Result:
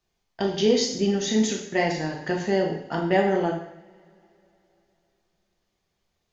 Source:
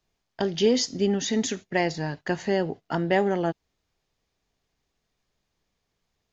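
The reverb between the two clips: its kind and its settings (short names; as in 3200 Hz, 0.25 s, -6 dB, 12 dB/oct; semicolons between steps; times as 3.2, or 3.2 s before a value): two-slope reverb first 0.69 s, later 3.5 s, from -27 dB, DRR -0.5 dB; gain -2 dB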